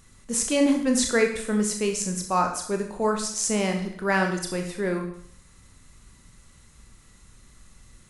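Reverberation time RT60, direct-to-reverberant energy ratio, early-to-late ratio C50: 0.60 s, 3.0 dB, 7.0 dB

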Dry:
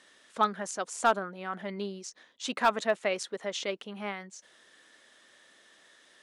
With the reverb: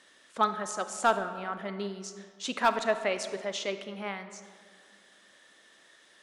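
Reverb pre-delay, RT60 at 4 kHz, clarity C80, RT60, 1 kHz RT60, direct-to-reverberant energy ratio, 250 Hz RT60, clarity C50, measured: 30 ms, 1.1 s, 11.5 dB, 2.0 s, 1.9 s, 9.5 dB, 2.4 s, 10.5 dB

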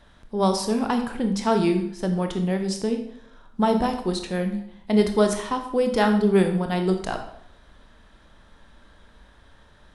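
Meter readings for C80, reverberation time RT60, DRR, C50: 11.0 dB, 0.70 s, 5.0 dB, 8.5 dB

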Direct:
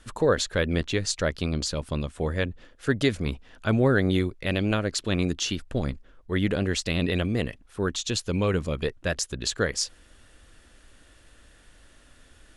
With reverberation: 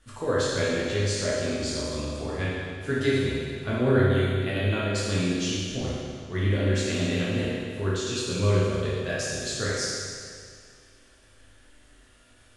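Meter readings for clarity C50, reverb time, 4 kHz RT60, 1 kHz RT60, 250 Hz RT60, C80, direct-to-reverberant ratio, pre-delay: -3.0 dB, 2.1 s, 2.0 s, 2.1 s, 2.1 s, -0.5 dB, -8.5 dB, 8 ms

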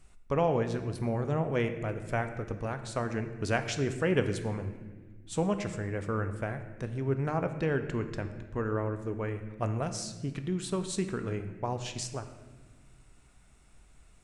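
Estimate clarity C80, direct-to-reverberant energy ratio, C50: 11.0 dB, 7.5 dB, 9.5 dB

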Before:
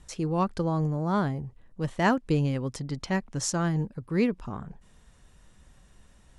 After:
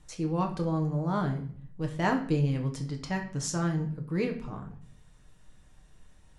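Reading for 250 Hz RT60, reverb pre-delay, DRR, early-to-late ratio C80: 0.80 s, 6 ms, 2.5 dB, 14.5 dB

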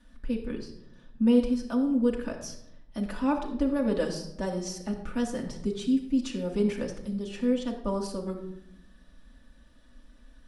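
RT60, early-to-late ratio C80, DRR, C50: 0.75 s, 10.0 dB, -2.5 dB, 8.0 dB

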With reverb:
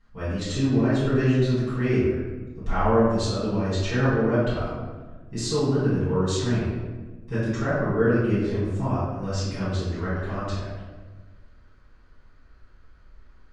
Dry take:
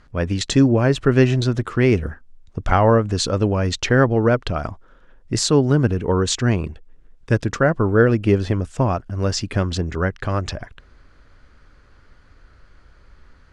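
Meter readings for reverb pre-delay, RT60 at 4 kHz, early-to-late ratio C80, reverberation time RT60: 4 ms, 0.80 s, 1.5 dB, 1.3 s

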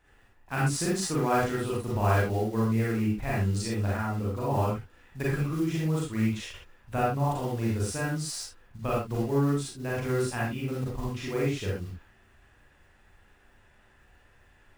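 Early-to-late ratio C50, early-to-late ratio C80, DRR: 0.0 dB, 5.5 dB, -6.5 dB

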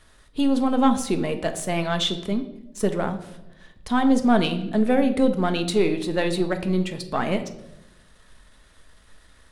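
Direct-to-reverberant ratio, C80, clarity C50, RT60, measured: 7.0 dB, 14.5 dB, 11.5 dB, 0.90 s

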